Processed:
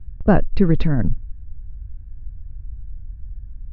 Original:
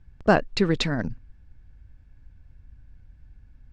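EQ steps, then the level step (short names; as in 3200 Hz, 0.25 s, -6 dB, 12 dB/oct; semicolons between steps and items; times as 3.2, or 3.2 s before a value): air absorption 60 m; RIAA curve playback; high shelf 5700 Hz -9.5 dB; -1.0 dB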